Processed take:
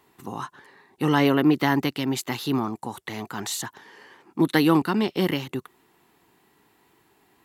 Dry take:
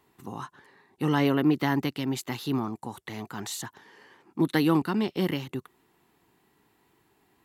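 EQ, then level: low shelf 220 Hz -5 dB; +5.5 dB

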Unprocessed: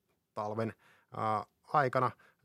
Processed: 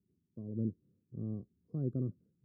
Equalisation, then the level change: inverse Chebyshev low-pass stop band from 780 Hz, stop band 50 dB; tilt +1.5 dB/oct; +8.0 dB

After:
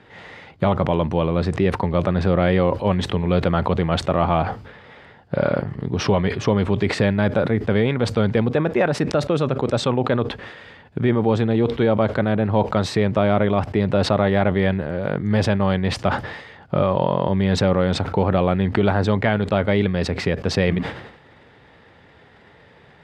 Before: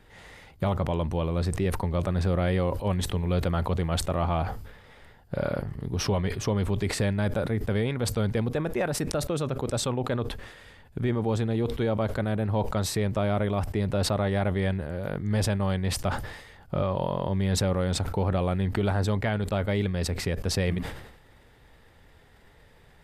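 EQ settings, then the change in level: BPF 120–3700 Hz; +9.0 dB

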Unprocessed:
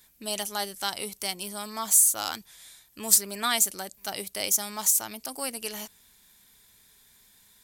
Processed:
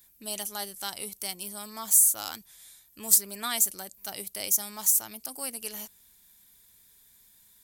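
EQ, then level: low shelf 210 Hz +4 dB; high shelf 9100 Hz +11.5 dB; -6.5 dB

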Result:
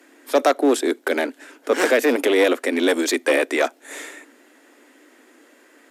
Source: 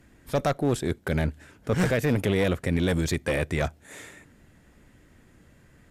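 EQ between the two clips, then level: steep high-pass 260 Hz 72 dB/oct; +9.0 dB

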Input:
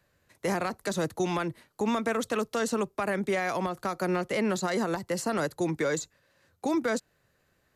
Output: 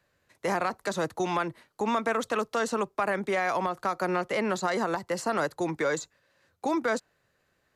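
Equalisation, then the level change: low shelf 270 Hz -5.5 dB; high shelf 10000 Hz -8.5 dB; dynamic EQ 1000 Hz, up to +5 dB, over -45 dBFS, Q 0.91; 0.0 dB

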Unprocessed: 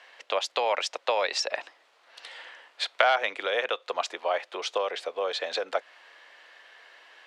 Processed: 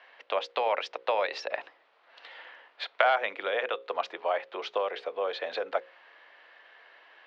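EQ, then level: air absorption 270 m; notches 60/120/180/240/300/360/420/480/540 Hz; 0.0 dB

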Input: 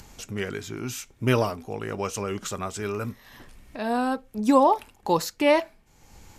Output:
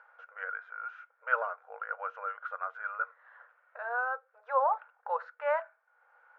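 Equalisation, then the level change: brick-wall FIR high-pass 460 Hz; ladder low-pass 1500 Hz, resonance 85%; +1.5 dB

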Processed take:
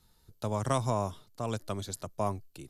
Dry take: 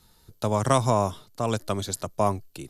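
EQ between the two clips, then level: low shelf 130 Hz +4 dB; -8.5 dB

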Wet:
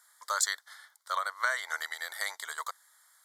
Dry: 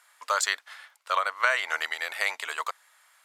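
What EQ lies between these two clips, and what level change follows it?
HPF 1000 Hz 6 dB/oct; Butterworth band-stop 2600 Hz, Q 1.9; high shelf 7100 Hz +8 dB; -3.5 dB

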